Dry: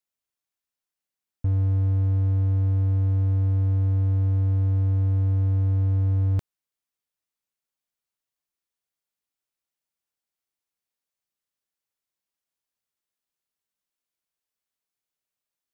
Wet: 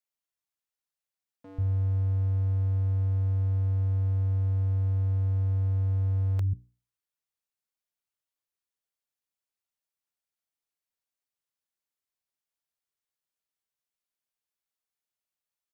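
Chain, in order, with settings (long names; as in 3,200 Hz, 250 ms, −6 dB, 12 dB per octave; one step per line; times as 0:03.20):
mains-hum notches 60/120/180/240/300/360/420 Hz
multiband delay without the direct sound highs, lows 140 ms, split 250 Hz
level −4 dB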